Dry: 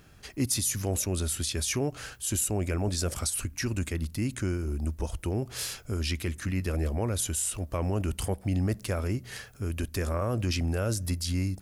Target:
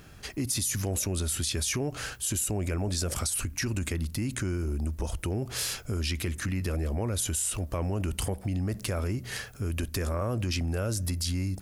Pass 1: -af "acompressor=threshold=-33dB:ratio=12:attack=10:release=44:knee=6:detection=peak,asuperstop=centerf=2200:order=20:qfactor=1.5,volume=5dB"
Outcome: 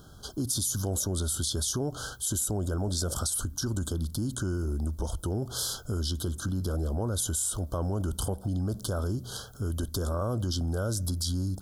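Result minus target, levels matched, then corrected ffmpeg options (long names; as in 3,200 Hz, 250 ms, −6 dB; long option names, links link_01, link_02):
2,000 Hz band −7.5 dB
-af "acompressor=threshold=-33dB:ratio=12:attack=10:release=44:knee=6:detection=peak,volume=5dB"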